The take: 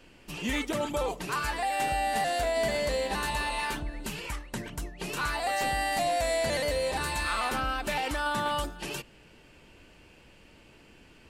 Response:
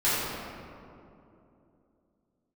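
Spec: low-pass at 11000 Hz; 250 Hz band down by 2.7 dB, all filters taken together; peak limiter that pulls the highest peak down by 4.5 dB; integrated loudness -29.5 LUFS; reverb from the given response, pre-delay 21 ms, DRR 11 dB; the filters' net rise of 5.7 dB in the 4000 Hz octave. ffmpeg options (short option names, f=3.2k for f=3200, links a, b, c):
-filter_complex "[0:a]lowpass=11k,equalizer=f=250:t=o:g=-3.5,equalizer=f=4k:t=o:g=7,alimiter=limit=-21.5dB:level=0:latency=1,asplit=2[a][b];[1:a]atrim=start_sample=2205,adelay=21[c];[b][c]afir=irnorm=-1:irlink=0,volume=-25.5dB[d];[a][d]amix=inputs=2:normalize=0,volume=0.5dB"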